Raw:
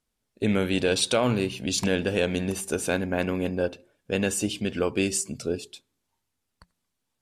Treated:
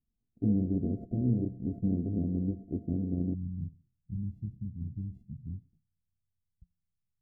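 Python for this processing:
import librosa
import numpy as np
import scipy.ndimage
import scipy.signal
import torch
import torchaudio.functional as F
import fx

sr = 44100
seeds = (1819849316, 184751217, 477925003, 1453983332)

y = np.r_[np.sort(x[:len(x) // 64 * 64].reshape(-1, 64), axis=1).ravel(), x[len(x) // 64 * 64:]]
y = fx.cheby2_lowpass(y, sr, hz=fx.steps((0.0, 1100.0), (3.33, 560.0)), order=4, stop_db=60)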